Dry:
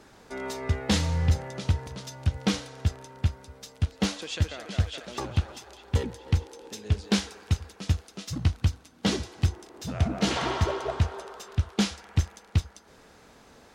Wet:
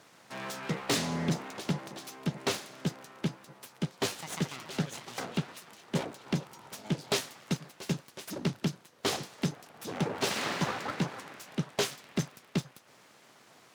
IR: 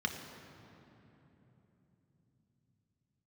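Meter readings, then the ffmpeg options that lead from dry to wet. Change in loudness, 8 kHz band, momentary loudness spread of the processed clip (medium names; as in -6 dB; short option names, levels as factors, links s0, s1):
-5.0 dB, -0.5 dB, 11 LU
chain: -af "aeval=exprs='abs(val(0))':c=same,highpass=f=120:w=0.5412,highpass=f=120:w=1.3066"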